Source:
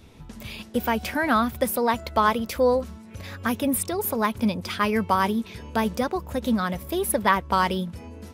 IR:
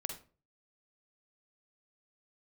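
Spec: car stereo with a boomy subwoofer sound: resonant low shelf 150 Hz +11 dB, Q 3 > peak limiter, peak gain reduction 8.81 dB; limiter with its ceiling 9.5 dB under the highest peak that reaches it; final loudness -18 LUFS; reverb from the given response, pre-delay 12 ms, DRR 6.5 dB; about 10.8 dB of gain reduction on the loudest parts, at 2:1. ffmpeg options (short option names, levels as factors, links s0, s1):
-filter_complex "[0:a]acompressor=threshold=0.0158:ratio=2,alimiter=level_in=1.19:limit=0.0631:level=0:latency=1,volume=0.841,asplit=2[s0][s1];[1:a]atrim=start_sample=2205,adelay=12[s2];[s1][s2]afir=irnorm=-1:irlink=0,volume=0.501[s3];[s0][s3]amix=inputs=2:normalize=0,lowshelf=f=150:t=q:w=3:g=11,volume=5.01,alimiter=limit=0.376:level=0:latency=1"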